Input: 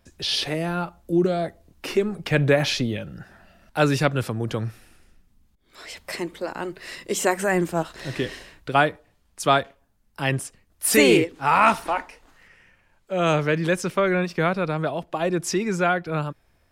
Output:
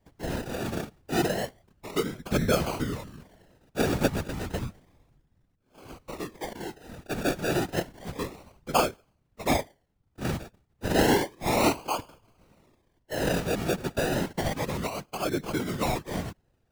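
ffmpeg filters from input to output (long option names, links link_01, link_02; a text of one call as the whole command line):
ffmpeg -i in.wav -af "acrusher=samples=33:mix=1:aa=0.000001:lfo=1:lforange=19.8:lforate=0.31,afftfilt=real='hypot(re,im)*cos(2*PI*random(0))':imag='hypot(re,im)*sin(2*PI*random(1))':win_size=512:overlap=0.75" out.wav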